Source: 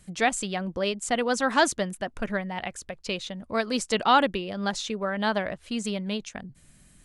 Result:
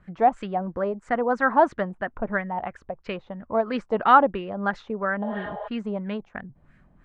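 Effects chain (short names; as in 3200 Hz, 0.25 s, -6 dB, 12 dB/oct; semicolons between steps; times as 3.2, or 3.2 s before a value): 0.66–1.57 bell 3100 Hz -7.5 dB 0.77 oct; 5.25–5.65 spectral repair 410–7600 Hz before; LFO low-pass sine 3 Hz 800–1800 Hz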